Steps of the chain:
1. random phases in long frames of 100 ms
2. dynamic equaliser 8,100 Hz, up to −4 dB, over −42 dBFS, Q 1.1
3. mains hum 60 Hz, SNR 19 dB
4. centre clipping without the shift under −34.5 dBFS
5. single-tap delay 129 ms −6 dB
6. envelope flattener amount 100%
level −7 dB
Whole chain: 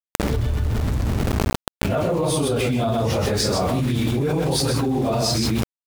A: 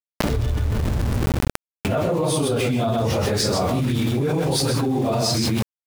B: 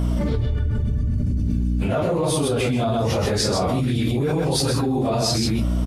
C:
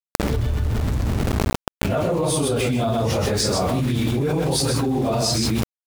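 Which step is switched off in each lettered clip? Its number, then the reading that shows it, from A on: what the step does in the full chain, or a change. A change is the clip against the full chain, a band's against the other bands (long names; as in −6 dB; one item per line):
3, change in crest factor −5.0 dB
4, distortion level −21 dB
2, 8 kHz band +2.0 dB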